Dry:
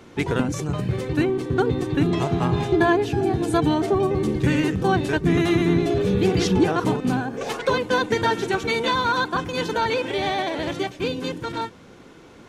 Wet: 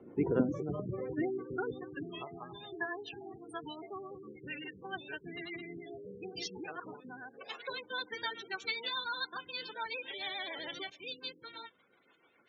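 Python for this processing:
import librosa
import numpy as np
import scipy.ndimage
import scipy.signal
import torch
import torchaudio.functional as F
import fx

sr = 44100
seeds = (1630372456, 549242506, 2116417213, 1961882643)

y = fx.spec_gate(x, sr, threshold_db=-20, keep='strong')
y = fx.filter_sweep_bandpass(y, sr, from_hz=350.0, to_hz=4800.0, start_s=0.25, end_s=2.49, q=0.84)
y = fx.rotary(y, sr, hz=7.0)
y = fx.env_flatten(y, sr, amount_pct=50, at=(10.21, 10.9))
y = y * 10.0 ** (-2.5 / 20.0)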